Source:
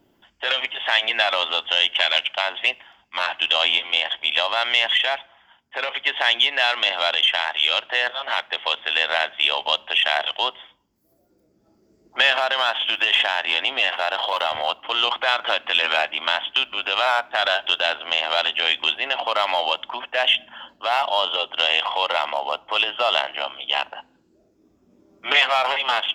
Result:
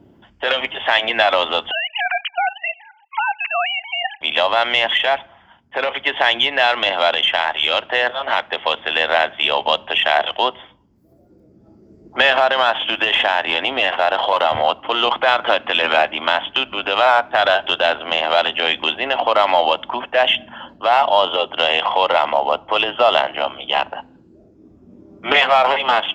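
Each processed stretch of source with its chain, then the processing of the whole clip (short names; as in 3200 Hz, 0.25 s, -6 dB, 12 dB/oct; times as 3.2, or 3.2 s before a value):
1.71–4.21 sine-wave speech + HPF 740 Hz 24 dB/oct + level quantiser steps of 12 dB
whole clip: HPF 78 Hz 12 dB/oct; tilt -3.5 dB/oct; gain +6.5 dB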